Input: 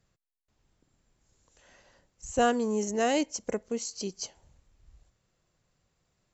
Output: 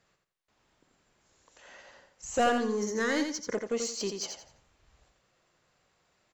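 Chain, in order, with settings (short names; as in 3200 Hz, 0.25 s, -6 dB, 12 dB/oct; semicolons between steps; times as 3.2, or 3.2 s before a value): 2.49–3.55 fixed phaser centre 2700 Hz, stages 6; overdrive pedal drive 19 dB, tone 2900 Hz, clips at -14 dBFS; on a send: feedback echo 86 ms, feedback 28%, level -6 dB; on the sum: gain -4 dB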